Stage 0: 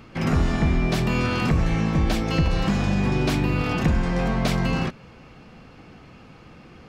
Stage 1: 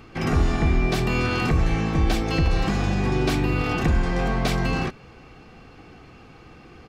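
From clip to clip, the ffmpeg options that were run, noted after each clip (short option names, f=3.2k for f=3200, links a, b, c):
-af "aecho=1:1:2.6:0.34"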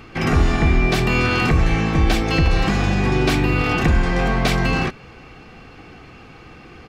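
-af "equalizer=f=2.2k:t=o:w=1.5:g=3.5,volume=4dB"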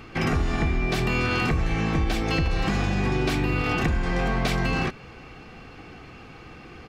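-af "acompressor=threshold=-18dB:ratio=6,volume=-2dB"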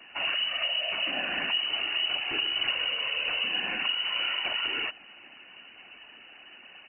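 -af "afftfilt=real='hypot(re,im)*cos(2*PI*random(0))':imag='hypot(re,im)*sin(2*PI*random(1))':win_size=512:overlap=0.75,lowpass=f=2.6k:t=q:w=0.5098,lowpass=f=2.6k:t=q:w=0.6013,lowpass=f=2.6k:t=q:w=0.9,lowpass=f=2.6k:t=q:w=2.563,afreqshift=-3000"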